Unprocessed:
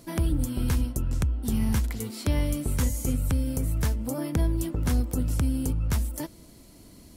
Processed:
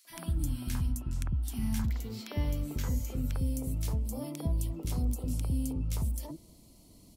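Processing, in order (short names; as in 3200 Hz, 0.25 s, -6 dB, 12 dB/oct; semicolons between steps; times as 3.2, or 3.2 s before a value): bell 460 Hz -14.5 dB 0.51 oct, from 1.82 s 9500 Hz, from 3.35 s 1600 Hz; three bands offset in time highs, mids, lows 50/100 ms, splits 390/1700 Hz; gain -5.5 dB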